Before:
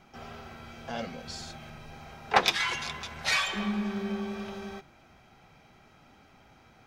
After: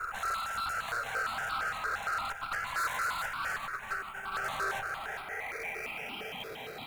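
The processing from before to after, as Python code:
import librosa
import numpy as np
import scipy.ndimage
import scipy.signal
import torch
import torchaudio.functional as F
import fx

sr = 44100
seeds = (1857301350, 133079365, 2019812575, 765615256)

p1 = fx.peak_eq(x, sr, hz=440.0, db=15.0, octaves=0.26)
p2 = fx.over_compress(p1, sr, threshold_db=-36.0, ratio=-0.5)
p3 = p2 + fx.echo_banded(p2, sr, ms=233, feedback_pct=77, hz=2700.0, wet_db=-16.0, dry=0)
p4 = fx.filter_sweep_lowpass(p3, sr, from_hz=1400.0, to_hz=3900.0, start_s=4.7, end_s=6.74, q=8.0)
p5 = fx.sample_hold(p4, sr, seeds[0], rate_hz=8200.0, jitter_pct=0)
p6 = p4 + (p5 * 10.0 ** (-8.0 / 20.0))
p7 = fx.filter_sweep_highpass(p6, sr, from_hz=1100.0, to_hz=200.0, start_s=4.31, end_s=6.32, q=1.0)
p8 = fx.tube_stage(p7, sr, drive_db=38.0, bias=0.4)
p9 = p8 + 10.0 ** (-9.5 / 20.0) * np.pad(p8, (int(412 * sr / 1000.0), 0))[:len(p8)]
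p10 = fx.phaser_held(p9, sr, hz=8.7, low_hz=840.0, high_hz=1800.0)
y = p10 * 10.0 ** (9.0 / 20.0)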